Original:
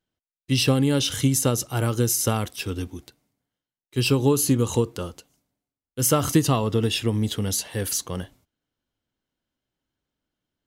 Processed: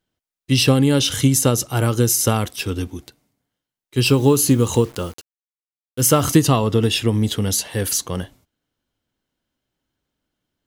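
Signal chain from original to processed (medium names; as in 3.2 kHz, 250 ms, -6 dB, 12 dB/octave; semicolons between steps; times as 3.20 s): 4.03–6.36 s: word length cut 8-bit, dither none; trim +5 dB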